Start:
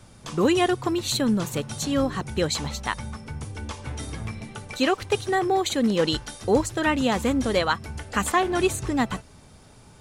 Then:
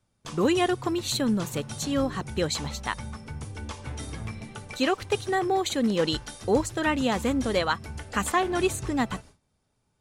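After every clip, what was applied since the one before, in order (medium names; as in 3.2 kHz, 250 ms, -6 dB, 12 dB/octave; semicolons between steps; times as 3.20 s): gate with hold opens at -36 dBFS; trim -2.5 dB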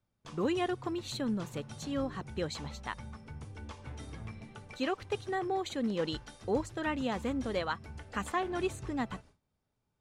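low-pass 3.7 kHz 6 dB/octave; trim -8 dB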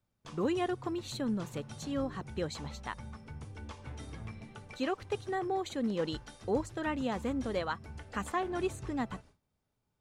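dynamic bell 3 kHz, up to -3 dB, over -47 dBFS, Q 0.72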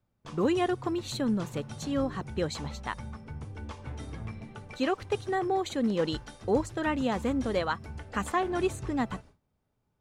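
tape noise reduction on one side only decoder only; trim +5 dB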